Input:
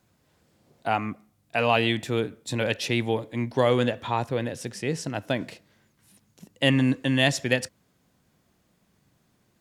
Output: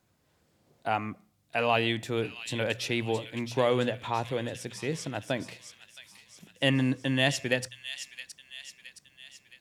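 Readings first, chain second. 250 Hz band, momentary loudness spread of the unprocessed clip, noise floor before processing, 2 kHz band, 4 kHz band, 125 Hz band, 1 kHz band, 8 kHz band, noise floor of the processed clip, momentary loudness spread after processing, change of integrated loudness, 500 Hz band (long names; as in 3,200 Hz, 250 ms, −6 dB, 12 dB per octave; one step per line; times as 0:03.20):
−5.0 dB, 10 LU, −68 dBFS, −3.0 dB, −3.0 dB, −4.5 dB, −3.5 dB, −2.5 dB, −70 dBFS, 23 LU, −4.0 dB, −3.5 dB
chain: parametric band 220 Hz −2 dB
hum removal 60.15 Hz, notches 3
on a send: delay with a high-pass on its return 668 ms, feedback 52%, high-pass 2,800 Hz, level −7 dB
on the sum: level −3.5 dB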